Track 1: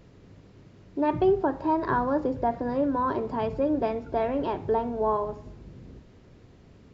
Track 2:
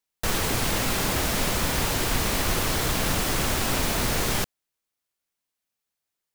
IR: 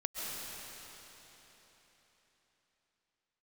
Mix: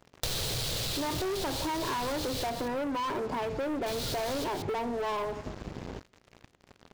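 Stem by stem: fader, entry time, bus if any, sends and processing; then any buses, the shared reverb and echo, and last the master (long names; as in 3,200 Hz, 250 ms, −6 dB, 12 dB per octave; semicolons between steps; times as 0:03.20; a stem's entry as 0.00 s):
−3.5 dB, 0.00 s, no send, no echo send, low-shelf EQ 290 Hz −8 dB
−10.5 dB, 0.00 s, muted 0:02.50–0:03.86, no send, echo send −18 dB, octave-band graphic EQ 125/250/500/1,000/2,000/4,000 Hz +9/−11/+6/−6/−5/+12 dB; automatic ducking −9 dB, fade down 1.60 s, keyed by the first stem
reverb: not used
echo: single-tap delay 180 ms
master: leveller curve on the samples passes 5; downward compressor 12 to 1, threshold −31 dBFS, peak gain reduction 12.5 dB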